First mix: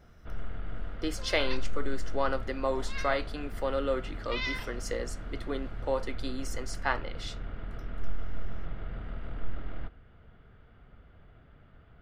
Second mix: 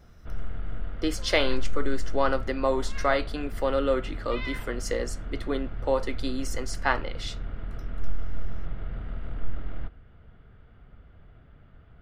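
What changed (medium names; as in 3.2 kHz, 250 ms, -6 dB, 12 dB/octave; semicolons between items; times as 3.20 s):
speech +4.5 dB; second sound: add distance through air 270 m; master: add bass shelf 200 Hz +4.5 dB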